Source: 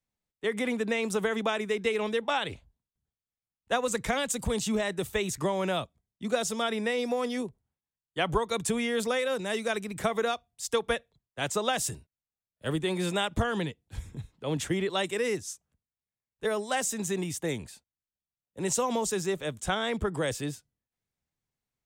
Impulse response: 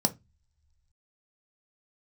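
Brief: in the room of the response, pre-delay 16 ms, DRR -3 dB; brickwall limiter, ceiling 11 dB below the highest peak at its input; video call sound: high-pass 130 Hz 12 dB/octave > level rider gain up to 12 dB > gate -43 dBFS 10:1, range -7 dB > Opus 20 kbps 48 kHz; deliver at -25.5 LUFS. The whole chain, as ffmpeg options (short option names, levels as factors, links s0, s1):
-filter_complex "[0:a]alimiter=level_in=1.12:limit=0.0631:level=0:latency=1,volume=0.891,asplit=2[s0][s1];[1:a]atrim=start_sample=2205,adelay=16[s2];[s1][s2]afir=irnorm=-1:irlink=0,volume=0.562[s3];[s0][s3]amix=inputs=2:normalize=0,highpass=130,dynaudnorm=m=3.98,agate=range=0.447:threshold=0.00708:ratio=10,volume=0.631" -ar 48000 -c:a libopus -b:a 20k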